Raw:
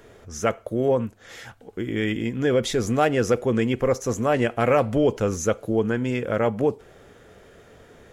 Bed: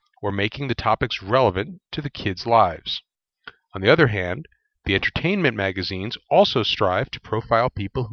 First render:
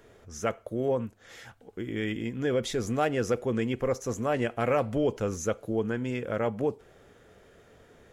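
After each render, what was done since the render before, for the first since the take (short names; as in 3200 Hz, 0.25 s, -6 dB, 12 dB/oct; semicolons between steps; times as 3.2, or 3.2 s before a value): gain -6.5 dB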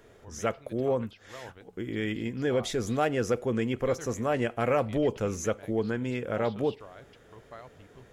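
add bed -28 dB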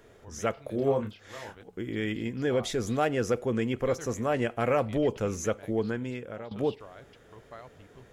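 0.54–1.63 doubler 29 ms -4.5 dB; 5.84–6.51 fade out, to -17.5 dB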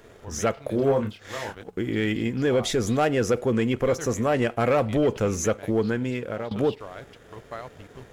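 sample leveller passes 1; in parallel at -0.5 dB: compressor, threshold -33 dBFS, peak gain reduction 13 dB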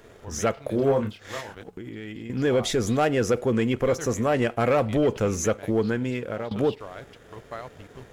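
1.4–2.3 compressor 12:1, threshold -33 dBFS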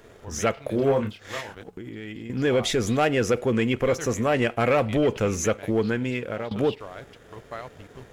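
dynamic EQ 2500 Hz, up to +5 dB, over -44 dBFS, Q 1.4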